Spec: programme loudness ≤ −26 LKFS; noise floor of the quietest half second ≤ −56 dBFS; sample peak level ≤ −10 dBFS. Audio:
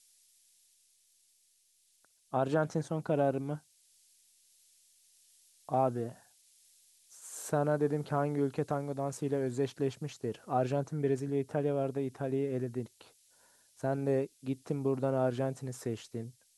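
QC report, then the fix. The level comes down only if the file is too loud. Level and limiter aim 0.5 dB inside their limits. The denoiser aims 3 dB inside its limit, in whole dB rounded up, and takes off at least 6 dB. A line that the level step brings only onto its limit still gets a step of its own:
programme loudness −33.5 LKFS: in spec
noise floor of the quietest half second −70 dBFS: in spec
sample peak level −16.0 dBFS: in spec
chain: no processing needed

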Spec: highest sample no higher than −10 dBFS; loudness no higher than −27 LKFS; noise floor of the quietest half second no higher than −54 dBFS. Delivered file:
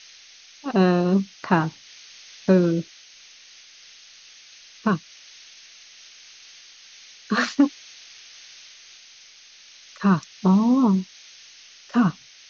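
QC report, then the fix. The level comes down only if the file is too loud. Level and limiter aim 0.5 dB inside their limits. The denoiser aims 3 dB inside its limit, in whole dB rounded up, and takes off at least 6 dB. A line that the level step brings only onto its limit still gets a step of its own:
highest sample −4.5 dBFS: out of spec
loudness −22.0 LKFS: out of spec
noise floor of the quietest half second −49 dBFS: out of spec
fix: level −5.5 dB
brickwall limiter −10.5 dBFS

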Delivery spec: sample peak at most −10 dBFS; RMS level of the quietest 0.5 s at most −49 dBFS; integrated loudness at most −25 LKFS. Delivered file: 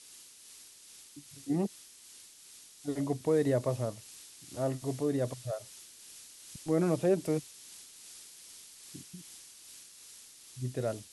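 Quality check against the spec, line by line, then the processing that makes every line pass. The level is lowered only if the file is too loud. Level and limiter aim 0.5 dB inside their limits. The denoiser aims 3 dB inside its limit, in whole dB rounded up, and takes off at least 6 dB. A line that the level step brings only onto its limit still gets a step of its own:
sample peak −15.5 dBFS: in spec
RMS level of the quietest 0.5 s −54 dBFS: in spec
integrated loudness −33.0 LKFS: in spec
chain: no processing needed

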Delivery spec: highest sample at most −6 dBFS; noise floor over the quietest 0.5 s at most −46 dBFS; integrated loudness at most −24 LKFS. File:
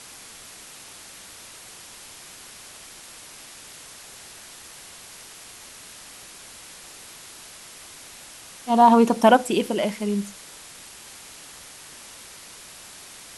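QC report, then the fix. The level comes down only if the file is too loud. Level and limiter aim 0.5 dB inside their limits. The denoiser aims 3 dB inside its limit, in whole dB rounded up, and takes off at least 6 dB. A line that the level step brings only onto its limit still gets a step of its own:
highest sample −4.0 dBFS: out of spec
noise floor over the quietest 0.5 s −44 dBFS: out of spec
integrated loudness −19.5 LKFS: out of spec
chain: level −5 dB

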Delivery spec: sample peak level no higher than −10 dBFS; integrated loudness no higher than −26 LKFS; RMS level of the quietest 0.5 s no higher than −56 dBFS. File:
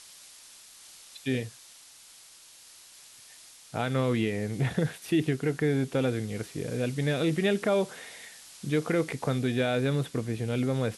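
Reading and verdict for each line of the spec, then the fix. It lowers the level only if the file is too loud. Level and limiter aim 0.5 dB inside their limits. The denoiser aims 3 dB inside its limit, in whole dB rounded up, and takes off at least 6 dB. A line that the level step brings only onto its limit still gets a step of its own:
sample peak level −14.0 dBFS: in spec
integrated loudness −29.0 LKFS: in spec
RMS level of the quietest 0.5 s −53 dBFS: out of spec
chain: broadband denoise 6 dB, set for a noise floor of −53 dBFS

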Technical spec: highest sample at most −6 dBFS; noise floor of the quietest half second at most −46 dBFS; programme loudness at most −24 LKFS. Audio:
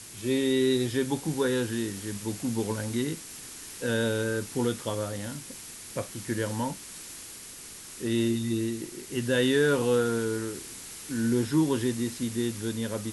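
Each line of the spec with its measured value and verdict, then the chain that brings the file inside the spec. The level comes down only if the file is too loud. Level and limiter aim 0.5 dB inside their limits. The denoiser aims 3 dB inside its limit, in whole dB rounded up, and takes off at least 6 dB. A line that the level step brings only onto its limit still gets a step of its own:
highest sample −12.5 dBFS: in spec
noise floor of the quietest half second −44 dBFS: out of spec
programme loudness −29.0 LKFS: in spec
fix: broadband denoise 6 dB, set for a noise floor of −44 dBFS

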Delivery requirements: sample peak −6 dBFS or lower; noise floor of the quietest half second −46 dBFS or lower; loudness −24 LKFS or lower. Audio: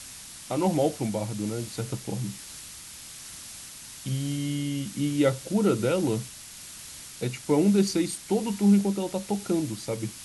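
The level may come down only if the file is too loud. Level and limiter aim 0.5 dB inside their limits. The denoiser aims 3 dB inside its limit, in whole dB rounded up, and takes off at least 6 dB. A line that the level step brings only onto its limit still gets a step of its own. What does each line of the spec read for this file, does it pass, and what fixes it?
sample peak −11.0 dBFS: in spec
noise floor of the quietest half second −44 dBFS: out of spec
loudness −27.0 LKFS: in spec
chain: broadband denoise 6 dB, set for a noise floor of −44 dBFS

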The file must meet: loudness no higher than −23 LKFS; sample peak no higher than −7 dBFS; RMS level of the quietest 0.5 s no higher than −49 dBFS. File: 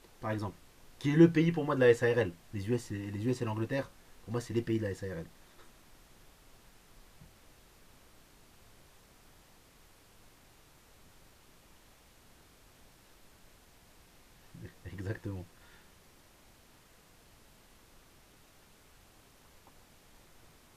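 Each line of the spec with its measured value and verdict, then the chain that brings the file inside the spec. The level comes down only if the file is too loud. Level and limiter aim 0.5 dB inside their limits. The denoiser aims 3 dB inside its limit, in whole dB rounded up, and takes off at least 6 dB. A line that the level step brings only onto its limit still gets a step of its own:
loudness −31.5 LKFS: in spec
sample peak −11.0 dBFS: in spec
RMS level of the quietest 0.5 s −61 dBFS: in spec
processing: no processing needed

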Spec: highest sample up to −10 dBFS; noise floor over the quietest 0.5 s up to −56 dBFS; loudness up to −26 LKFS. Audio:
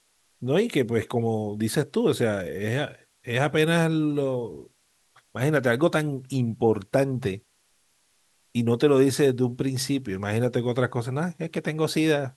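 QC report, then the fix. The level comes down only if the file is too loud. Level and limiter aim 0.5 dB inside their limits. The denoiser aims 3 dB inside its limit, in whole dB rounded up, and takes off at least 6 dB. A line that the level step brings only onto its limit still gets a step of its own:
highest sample −7.5 dBFS: out of spec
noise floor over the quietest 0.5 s −66 dBFS: in spec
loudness −25.0 LKFS: out of spec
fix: level −1.5 dB
brickwall limiter −10.5 dBFS

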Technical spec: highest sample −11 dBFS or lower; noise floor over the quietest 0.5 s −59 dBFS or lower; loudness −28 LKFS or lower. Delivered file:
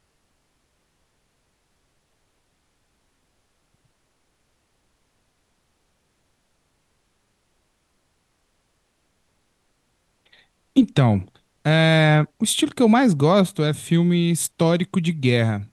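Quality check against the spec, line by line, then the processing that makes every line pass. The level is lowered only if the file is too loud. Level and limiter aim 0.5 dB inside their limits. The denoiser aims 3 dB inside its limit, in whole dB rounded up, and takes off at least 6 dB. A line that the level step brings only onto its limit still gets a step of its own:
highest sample −4.0 dBFS: out of spec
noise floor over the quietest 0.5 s −68 dBFS: in spec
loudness −19.0 LKFS: out of spec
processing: level −9.5 dB

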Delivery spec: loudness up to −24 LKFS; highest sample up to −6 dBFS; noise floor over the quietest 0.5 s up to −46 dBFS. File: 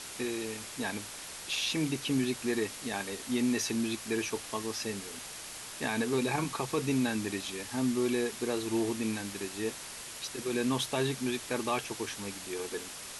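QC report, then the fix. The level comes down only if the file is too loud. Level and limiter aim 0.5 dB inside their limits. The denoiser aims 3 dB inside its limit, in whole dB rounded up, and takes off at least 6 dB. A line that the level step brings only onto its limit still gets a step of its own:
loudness −33.0 LKFS: in spec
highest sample −17.5 dBFS: in spec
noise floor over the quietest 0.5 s −44 dBFS: out of spec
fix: broadband denoise 6 dB, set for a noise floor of −44 dBFS

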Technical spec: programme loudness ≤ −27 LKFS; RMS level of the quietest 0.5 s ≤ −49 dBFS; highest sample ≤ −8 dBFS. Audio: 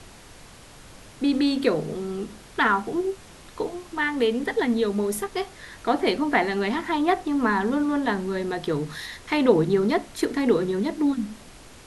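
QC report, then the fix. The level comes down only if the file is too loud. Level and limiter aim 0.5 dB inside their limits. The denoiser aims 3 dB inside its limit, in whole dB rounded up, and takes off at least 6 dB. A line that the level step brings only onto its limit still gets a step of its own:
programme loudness −24.5 LKFS: out of spec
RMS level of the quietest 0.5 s −46 dBFS: out of spec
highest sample −5.5 dBFS: out of spec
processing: broadband denoise 6 dB, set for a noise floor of −46 dBFS
level −3 dB

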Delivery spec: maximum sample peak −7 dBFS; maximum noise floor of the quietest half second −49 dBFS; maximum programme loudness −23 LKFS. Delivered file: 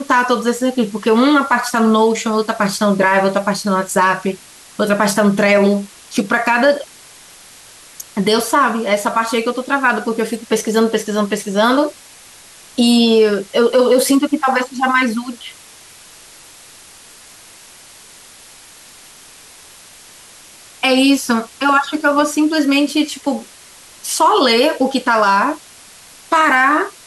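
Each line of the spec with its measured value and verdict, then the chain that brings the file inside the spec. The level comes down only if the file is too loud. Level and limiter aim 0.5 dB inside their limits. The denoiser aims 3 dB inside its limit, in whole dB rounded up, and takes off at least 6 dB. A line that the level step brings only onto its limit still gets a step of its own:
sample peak −4.0 dBFS: out of spec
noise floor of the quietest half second −42 dBFS: out of spec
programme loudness −15.0 LKFS: out of spec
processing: level −8.5 dB

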